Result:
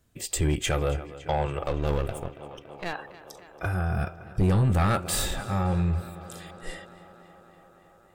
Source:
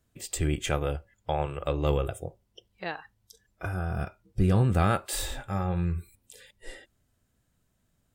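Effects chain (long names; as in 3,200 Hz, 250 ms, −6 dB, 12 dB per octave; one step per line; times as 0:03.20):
0:01.63–0:02.93: gain on one half-wave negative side −12 dB
on a send: tape delay 281 ms, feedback 82%, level −17 dB, low-pass 5,000 Hz
on the sum: soft clipping −21.5 dBFS, distortion −10 dB
level +5 dB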